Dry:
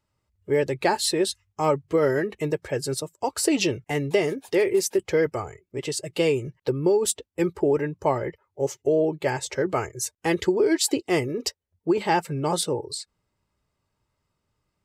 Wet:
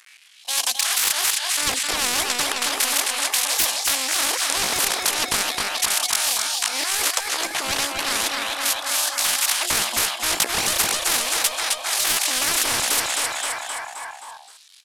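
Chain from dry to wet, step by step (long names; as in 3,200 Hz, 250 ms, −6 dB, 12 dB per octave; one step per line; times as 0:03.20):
variable-slope delta modulation 32 kbit/s
in parallel at +1.5 dB: brickwall limiter −18.5 dBFS, peak gain reduction 9 dB
on the sum: volume swells 134 ms
auto-filter high-pass sine 0.36 Hz 400–2,100 Hz
soft clipping −12.5 dBFS, distortion −10 dB
pitch shifter +11 semitones
on a send: repeating echo 262 ms, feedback 52%, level −10 dB
on the sum: every bin compressed towards the loudest bin 10 to 1
level +6 dB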